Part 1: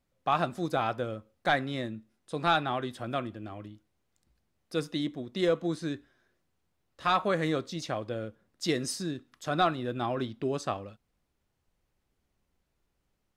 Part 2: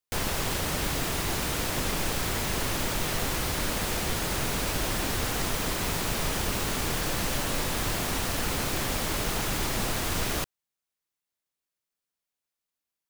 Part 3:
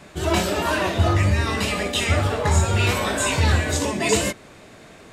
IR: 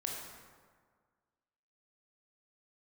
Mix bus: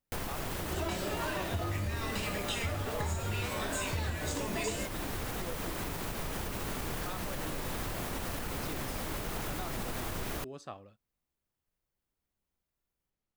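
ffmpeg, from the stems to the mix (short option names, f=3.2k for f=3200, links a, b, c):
-filter_complex "[0:a]volume=-12dB[a];[1:a]equalizer=f=5.4k:t=o:w=2.4:g=-6,volume=-1.5dB[b];[2:a]adelay=550,volume=-8dB[c];[a][b]amix=inputs=2:normalize=0,alimiter=level_in=1.5dB:limit=-24dB:level=0:latency=1:release=193,volume=-1.5dB,volume=0dB[d];[c][d]amix=inputs=2:normalize=0,acompressor=threshold=-31dB:ratio=6"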